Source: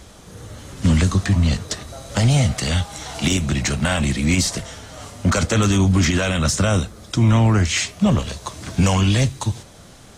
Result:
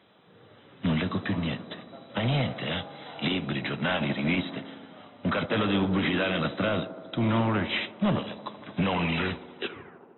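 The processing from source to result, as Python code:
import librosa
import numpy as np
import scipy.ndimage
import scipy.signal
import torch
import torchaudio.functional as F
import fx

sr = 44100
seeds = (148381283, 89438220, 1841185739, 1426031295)

y = fx.tape_stop_end(x, sr, length_s=1.29)
y = scipy.signal.sosfilt(scipy.signal.butter(4, 120.0, 'highpass', fs=sr, output='sos'), y)
y = fx.low_shelf(y, sr, hz=190.0, db=-7.5)
y = np.clip(y, -10.0 ** (-18.0 / 20.0), 10.0 ** (-18.0 / 20.0))
y = fx.brickwall_lowpass(y, sr, high_hz=4000.0)
y = fx.echo_wet_bandpass(y, sr, ms=77, feedback_pct=84, hz=490.0, wet_db=-9.0)
y = fx.upward_expand(y, sr, threshold_db=-39.0, expansion=1.5)
y = y * 10.0 ** (-2.0 / 20.0)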